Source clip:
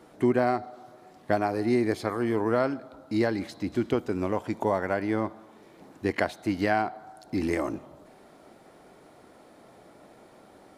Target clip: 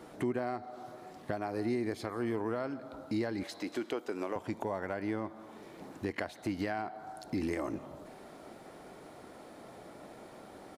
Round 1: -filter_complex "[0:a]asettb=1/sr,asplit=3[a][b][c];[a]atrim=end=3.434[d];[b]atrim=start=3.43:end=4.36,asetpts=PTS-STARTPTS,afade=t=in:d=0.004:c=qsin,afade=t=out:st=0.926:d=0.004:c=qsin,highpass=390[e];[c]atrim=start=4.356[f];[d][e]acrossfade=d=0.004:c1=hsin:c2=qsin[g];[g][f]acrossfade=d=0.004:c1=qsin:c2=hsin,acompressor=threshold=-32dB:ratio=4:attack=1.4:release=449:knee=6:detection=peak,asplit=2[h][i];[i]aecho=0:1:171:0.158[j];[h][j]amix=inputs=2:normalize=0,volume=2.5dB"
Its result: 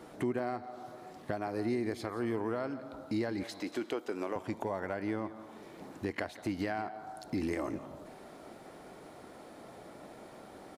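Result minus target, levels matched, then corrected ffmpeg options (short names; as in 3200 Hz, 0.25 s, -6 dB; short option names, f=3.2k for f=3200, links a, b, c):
echo-to-direct +7.5 dB
-filter_complex "[0:a]asettb=1/sr,asplit=3[a][b][c];[a]atrim=end=3.434[d];[b]atrim=start=3.43:end=4.36,asetpts=PTS-STARTPTS,afade=t=in:d=0.004:c=qsin,afade=t=out:st=0.926:d=0.004:c=qsin,highpass=390[e];[c]atrim=start=4.356[f];[d][e]acrossfade=d=0.004:c1=hsin:c2=qsin[g];[g][f]acrossfade=d=0.004:c1=qsin:c2=hsin,acompressor=threshold=-32dB:ratio=4:attack=1.4:release=449:knee=6:detection=peak,asplit=2[h][i];[i]aecho=0:1:171:0.0668[j];[h][j]amix=inputs=2:normalize=0,volume=2.5dB"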